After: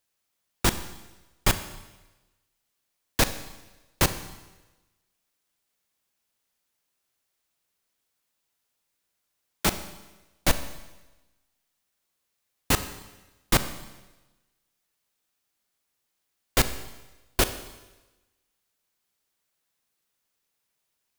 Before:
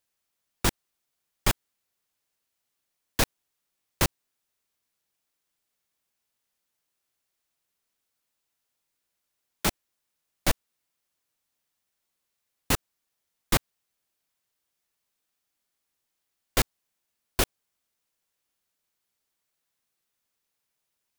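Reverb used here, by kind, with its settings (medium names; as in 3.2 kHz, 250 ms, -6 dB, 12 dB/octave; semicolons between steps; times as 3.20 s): Schroeder reverb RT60 1.1 s, combs from 30 ms, DRR 10.5 dB; trim +2 dB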